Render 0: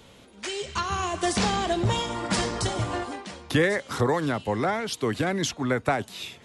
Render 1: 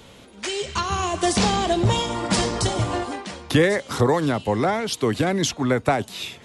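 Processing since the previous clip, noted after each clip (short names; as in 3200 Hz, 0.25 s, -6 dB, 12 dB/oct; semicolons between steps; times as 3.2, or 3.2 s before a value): dynamic EQ 1600 Hz, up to -4 dB, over -38 dBFS, Q 1.4; gain +5 dB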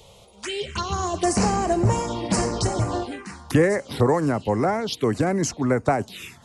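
envelope phaser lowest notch 240 Hz, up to 3500 Hz, full sweep at -19 dBFS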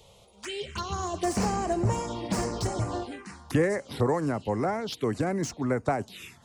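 slew limiter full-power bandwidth 250 Hz; gain -6 dB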